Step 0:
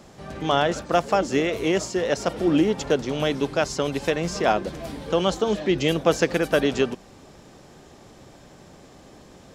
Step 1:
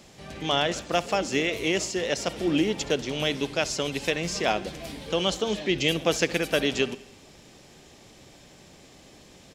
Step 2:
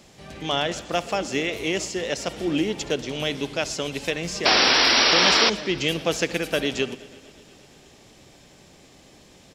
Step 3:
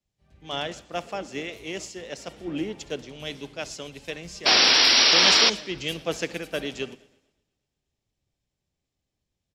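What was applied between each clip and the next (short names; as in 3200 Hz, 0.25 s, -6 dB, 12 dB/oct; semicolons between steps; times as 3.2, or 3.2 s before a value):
resonant high shelf 1800 Hz +6 dB, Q 1.5; feedback echo 67 ms, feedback 60%, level -20 dB; gain -4.5 dB
painted sound noise, 4.45–5.5, 230–5800 Hz -18 dBFS; warbling echo 0.118 s, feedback 76%, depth 51 cents, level -22 dB
three-band expander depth 100%; gain -6.5 dB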